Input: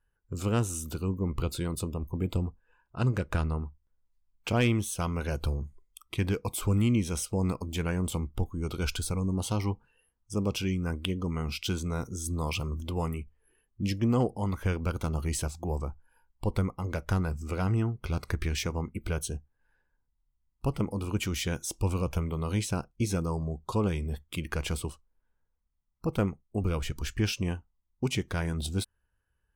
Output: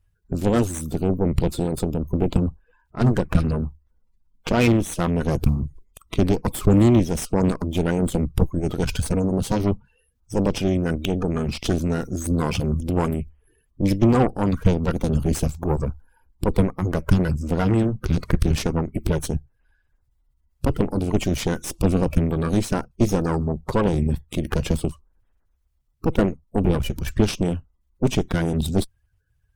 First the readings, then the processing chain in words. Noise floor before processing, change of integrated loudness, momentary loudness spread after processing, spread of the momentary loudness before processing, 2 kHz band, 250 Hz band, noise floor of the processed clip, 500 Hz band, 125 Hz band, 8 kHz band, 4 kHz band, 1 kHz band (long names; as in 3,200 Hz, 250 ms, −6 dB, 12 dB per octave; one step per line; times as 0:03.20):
−77 dBFS, +8.5 dB, 7 LU, 7 LU, +5.0 dB, +10.5 dB, −67 dBFS, +10.5 dB, +7.5 dB, +3.0 dB, +3.5 dB, +8.5 dB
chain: spectral magnitudes quantised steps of 30 dB
harmonic generator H 6 −13 dB, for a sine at −14 dBFS
low-shelf EQ 360 Hz +9 dB
level +3 dB